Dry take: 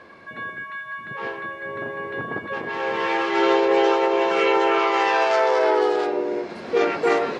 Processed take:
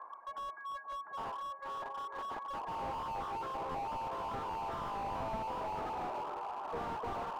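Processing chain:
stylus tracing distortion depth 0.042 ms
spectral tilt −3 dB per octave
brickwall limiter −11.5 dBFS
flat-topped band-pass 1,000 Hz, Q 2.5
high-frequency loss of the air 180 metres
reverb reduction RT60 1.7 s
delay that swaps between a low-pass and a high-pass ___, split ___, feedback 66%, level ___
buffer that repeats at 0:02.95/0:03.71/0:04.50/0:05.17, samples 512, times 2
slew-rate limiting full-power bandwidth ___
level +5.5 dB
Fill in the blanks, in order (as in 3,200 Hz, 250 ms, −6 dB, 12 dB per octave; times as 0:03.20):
475 ms, 1,100 Hz, −10 dB, 6 Hz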